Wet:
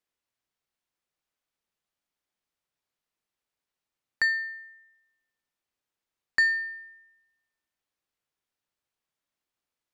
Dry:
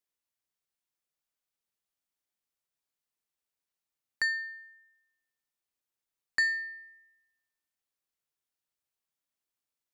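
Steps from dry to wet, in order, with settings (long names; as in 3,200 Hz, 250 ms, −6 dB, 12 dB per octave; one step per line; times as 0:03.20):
high-shelf EQ 6,200 Hz −11 dB
level +5.5 dB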